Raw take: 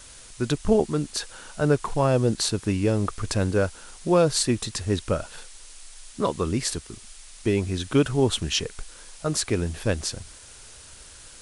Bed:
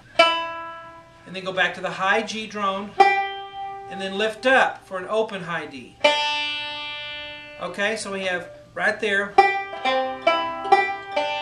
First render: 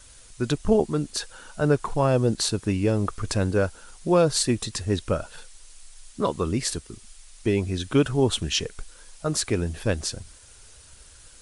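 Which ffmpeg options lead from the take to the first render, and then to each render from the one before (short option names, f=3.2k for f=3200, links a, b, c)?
-af "afftdn=nr=6:nf=-46"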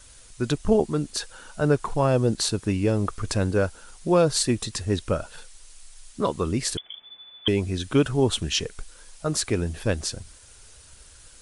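-filter_complex "[0:a]asettb=1/sr,asplit=3[a][b][c];[a]atrim=end=6.774[d];[b]atrim=start=6.77:end=7.48,asetpts=PTS-STARTPTS,afade=t=in:d=0.004:c=qsin,afade=t=out:st=0.706:d=0.004:c=qsin,lowpass=f=3k:t=q:w=0.5098,lowpass=f=3k:t=q:w=0.6013,lowpass=f=3k:t=q:w=0.9,lowpass=f=3k:t=q:w=2.563,afreqshift=-3500[e];[c]atrim=start=7.476[f];[d][e]acrossfade=d=0.004:c1=hsin:c2=qsin[g];[g][f]acrossfade=d=0.004:c1=qsin:c2=hsin"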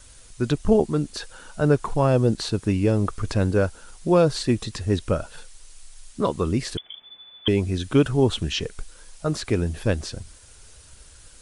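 -filter_complex "[0:a]acrossover=split=4600[a][b];[b]acompressor=threshold=-38dB:ratio=4:attack=1:release=60[c];[a][c]amix=inputs=2:normalize=0,lowshelf=f=490:g=3"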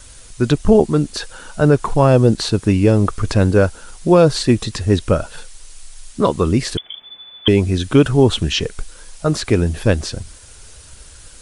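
-af "volume=7.5dB,alimiter=limit=-1dB:level=0:latency=1"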